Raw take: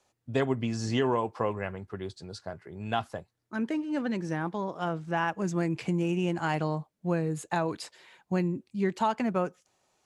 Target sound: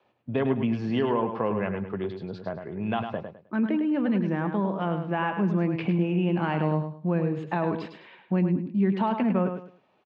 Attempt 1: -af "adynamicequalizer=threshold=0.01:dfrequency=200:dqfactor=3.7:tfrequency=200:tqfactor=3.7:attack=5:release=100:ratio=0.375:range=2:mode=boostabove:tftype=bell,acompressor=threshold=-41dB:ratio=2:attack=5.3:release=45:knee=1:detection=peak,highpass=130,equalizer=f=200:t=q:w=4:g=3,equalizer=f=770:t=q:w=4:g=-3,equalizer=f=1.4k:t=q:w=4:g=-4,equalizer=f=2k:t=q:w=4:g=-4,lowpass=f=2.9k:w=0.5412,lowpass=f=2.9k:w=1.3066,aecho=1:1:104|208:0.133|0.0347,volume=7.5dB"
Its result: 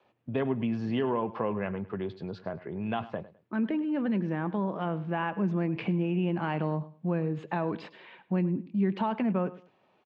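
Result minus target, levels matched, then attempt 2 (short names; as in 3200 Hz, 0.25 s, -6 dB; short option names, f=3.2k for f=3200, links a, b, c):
echo-to-direct -10 dB; compressor: peak gain reduction +3 dB
-af "adynamicequalizer=threshold=0.01:dfrequency=200:dqfactor=3.7:tfrequency=200:tqfactor=3.7:attack=5:release=100:ratio=0.375:range=2:mode=boostabove:tftype=bell,acompressor=threshold=-34.5dB:ratio=2:attack=5.3:release=45:knee=1:detection=peak,highpass=130,equalizer=f=200:t=q:w=4:g=3,equalizer=f=770:t=q:w=4:g=-3,equalizer=f=1.4k:t=q:w=4:g=-4,equalizer=f=2k:t=q:w=4:g=-4,lowpass=f=2.9k:w=0.5412,lowpass=f=2.9k:w=1.3066,aecho=1:1:104|208|312:0.422|0.11|0.0285,volume=7.5dB"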